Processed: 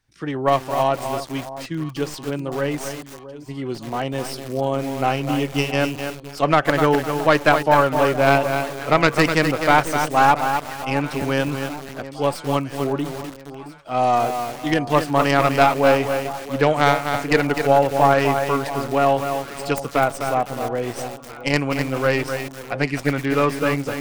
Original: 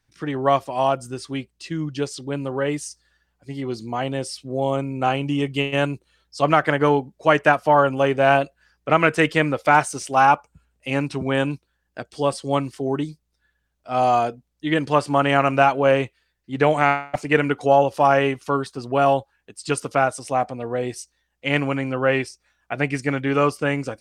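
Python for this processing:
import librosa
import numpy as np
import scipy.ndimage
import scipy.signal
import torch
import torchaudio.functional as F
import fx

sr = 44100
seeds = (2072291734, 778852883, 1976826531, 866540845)

y = fx.tracing_dist(x, sr, depth_ms=0.11)
y = fx.echo_alternate(y, sr, ms=669, hz=1100.0, feedback_pct=66, wet_db=-14)
y = fx.echo_crushed(y, sr, ms=253, feedback_pct=35, bits=5, wet_db=-6)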